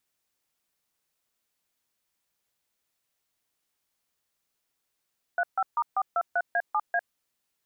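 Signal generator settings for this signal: DTMF "35*423A7A", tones 53 ms, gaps 142 ms, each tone -25 dBFS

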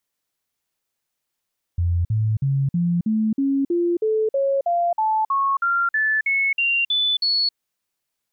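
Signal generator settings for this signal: stepped sine 86.5 Hz up, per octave 3, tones 18, 0.27 s, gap 0.05 s -17 dBFS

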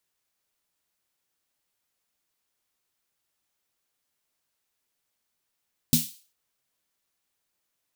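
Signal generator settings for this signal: snare drum length 0.40 s, tones 160 Hz, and 240 Hz, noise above 3.1 kHz, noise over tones -2 dB, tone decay 0.20 s, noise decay 0.40 s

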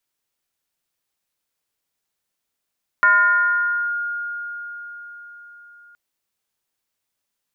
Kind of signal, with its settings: FM tone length 2.92 s, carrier 1.42 kHz, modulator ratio 0.28, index 0.77, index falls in 0.92 s linear, decay 4.88 s, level -10 dB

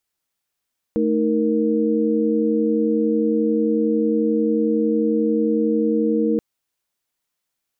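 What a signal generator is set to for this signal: chord A3/D#4/A#4 sine, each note -20.5 dBFS 5.43 s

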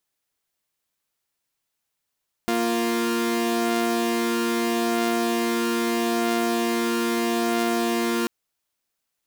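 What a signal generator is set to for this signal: chord A#3/F4 saw, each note -21.5 dBFS 5.79 s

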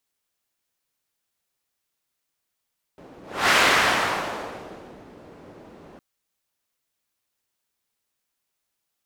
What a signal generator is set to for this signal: whoosh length 3.01 s, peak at 0.54 s, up 0.32 s, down 1.67 s, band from 380 Hz, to 1.7 kHz, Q 0.91, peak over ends 29 dB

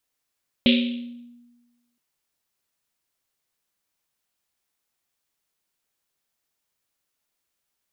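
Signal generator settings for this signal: Risset drum length 1.32 s, pitch 240 Hz, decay 1.29 s, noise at 3.1 kHz, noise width 1.5 kHz, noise 30%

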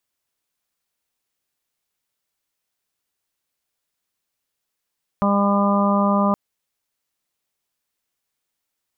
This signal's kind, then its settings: steady additive tone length 1.12 s, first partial 201 Hz, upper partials -14/-5/-10/-6/-6 dB, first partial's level -17.5 dB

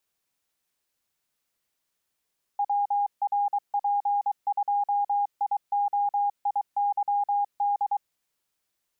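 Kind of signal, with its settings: Morse "WRP2IOIYD" 23 wpm 814 Hz -21.5 dBFS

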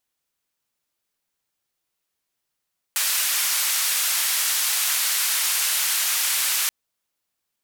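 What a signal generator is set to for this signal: noise band 1.3–15 kHz, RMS -22.5 dBFS 3.73 s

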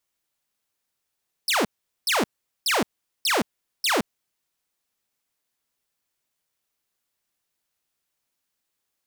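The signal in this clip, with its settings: burst of laser zaps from 5.6 kHz, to 180 Hz, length 0.17 s saw, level -16.5 dB, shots 5, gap 0.42 s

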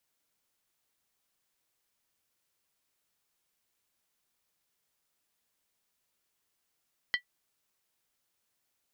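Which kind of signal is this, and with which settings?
skin hit, lowest mode 1.96 kHz, decay 0.10 s, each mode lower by 6 dB, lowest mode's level -21 dB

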